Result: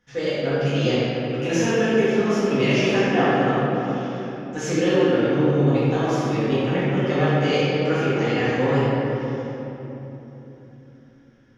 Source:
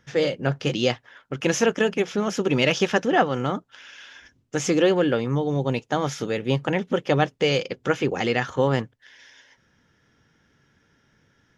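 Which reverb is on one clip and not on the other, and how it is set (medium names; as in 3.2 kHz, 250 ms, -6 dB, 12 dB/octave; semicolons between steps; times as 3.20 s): simulated room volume 210 m³, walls hard, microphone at 1.9 m; trim -10.5 dB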